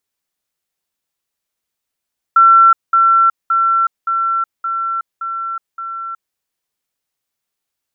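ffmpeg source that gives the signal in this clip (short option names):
-f lavfi -i "aevalsrc='pow(10,(-4.5-3*floor(t/0.57))/20)*sin(2*PI*1350*t)*clip(min(mod(t,0.57),0.37-mod(t,0.57))/0.005,0,1)':d=3.99:s=44100"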